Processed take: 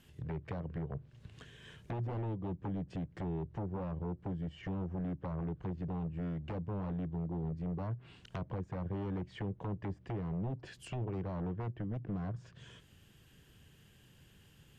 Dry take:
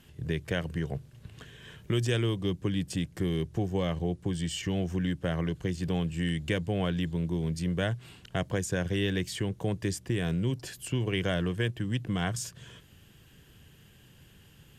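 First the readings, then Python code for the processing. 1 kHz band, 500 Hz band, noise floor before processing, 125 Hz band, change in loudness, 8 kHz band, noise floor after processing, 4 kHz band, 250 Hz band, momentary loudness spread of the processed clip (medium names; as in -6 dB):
-5.0 dB, -10.5 dB, -57 dBFS, -7.5 dB, -8.5 dB, under -20 dB, -62 dBFS, -21.0 dB, -8.0 dB, 8 LU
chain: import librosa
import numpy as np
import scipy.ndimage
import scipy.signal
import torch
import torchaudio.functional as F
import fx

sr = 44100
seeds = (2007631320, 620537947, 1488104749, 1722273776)

y = 10.0 ** (-26.0 / 20.0) * (np.abs((x / 10.0 ** (-26.0 / 20.0) + 3.0) % 4.0 - 2.0) - 1.0)
y = fx.env_lowpass_down(y, sr, base_hz=890.0, full_db=-29.5)
y = y * 10.0 ** (-5.5 / 20.0)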